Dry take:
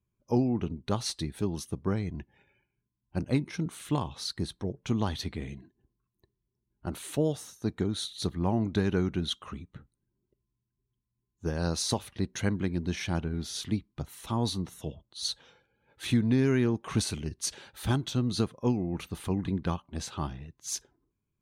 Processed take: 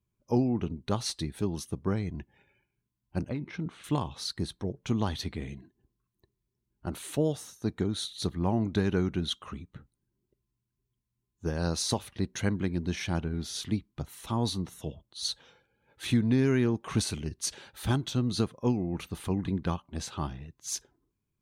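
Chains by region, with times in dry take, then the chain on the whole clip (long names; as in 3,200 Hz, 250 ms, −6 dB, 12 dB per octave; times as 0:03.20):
0:03.29–0:03.84: low-pass filter 3,200 Hz + downward compressor 10 to 1, threshold −28 dBFS
whole clip: no processing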